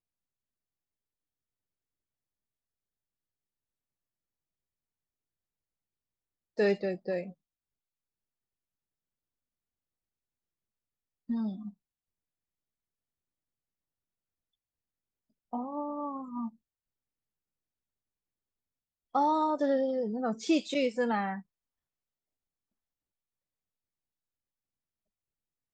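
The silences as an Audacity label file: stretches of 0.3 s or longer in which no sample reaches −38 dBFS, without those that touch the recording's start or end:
7.300000	11.300000	silence
11.690000	15.530000	silence
16.480000	19.150000	silence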